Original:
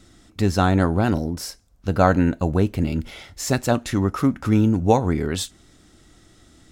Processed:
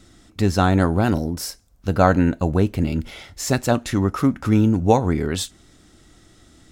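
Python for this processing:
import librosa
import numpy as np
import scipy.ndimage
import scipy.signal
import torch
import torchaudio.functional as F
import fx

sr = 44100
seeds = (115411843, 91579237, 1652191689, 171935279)

y = fx.high_shelf(x, sr, hz=9800.0, db=6.0, at=(0.72, 1.94))
y = y * 10.0 ** (1.0 / 20.0)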